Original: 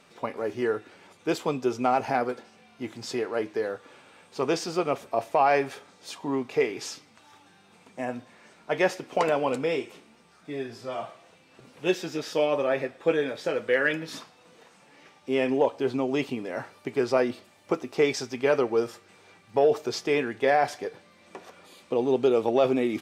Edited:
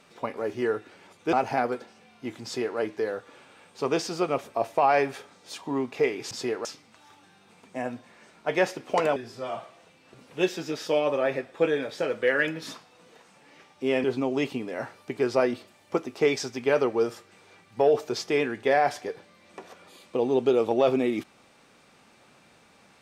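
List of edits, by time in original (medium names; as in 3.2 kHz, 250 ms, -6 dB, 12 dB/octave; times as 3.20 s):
1.33–1.90 s: delete
3.01–3.35 s: copy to 6.88 s
9.39–10.62 s: delete
15.50–15.81 s: delete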